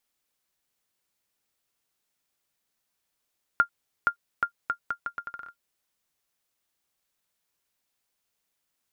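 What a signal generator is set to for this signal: bouncing ball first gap 0.47 s, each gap 0.76, 1.4 kHz, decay 91 ms -9.5 dBFS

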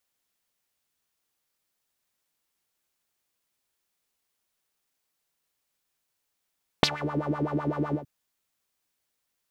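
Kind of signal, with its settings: synth patch with filter wobble D3, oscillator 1 triangle, oscillator 2 saw, interval +12 st, oscillator 2 level -10.5 dB, filter bandpass, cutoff 230 Hz, Q 5, filter envelope 3.5 oct, filter decay 0.24 s, attack 1 ms, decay 0.07 s, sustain -20 dB, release 0.11 s, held 1.11 s, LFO 7.9 Hz, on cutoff 1.1 oct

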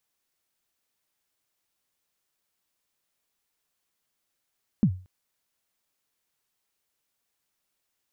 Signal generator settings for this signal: kick drum length 0.23 s, from 240 Hz, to 92 Hz, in 74 ms, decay 0.35 s, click off, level -13 dB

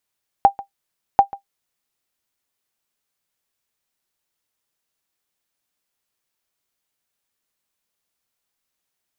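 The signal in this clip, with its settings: sonar ping 795 Hz, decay 0.11 s, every 0.74 s, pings 2, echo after 0.14 s, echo -20 dB -1.5 dBFS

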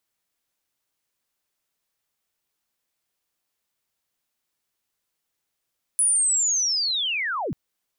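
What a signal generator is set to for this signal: sweep linear 10 kHz -> 96 Hz -16.5 dBFS -> -25 dBFS 1.54 s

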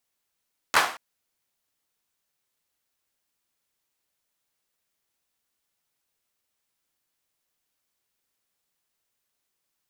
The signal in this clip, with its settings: hand clap length 0.23 s, bursts 3, apart 12 ms, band 1.1 kHz, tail 0.42 s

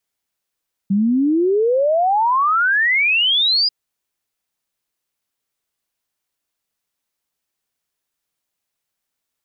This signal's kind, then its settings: log sweep 190 Hz -> 5 kHz 2.79 s -13 dBFS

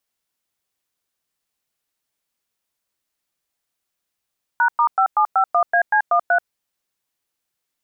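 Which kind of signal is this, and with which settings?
DTMF "#*5751AC13", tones 84 ms, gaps 105 ms, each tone -15.5 dBFS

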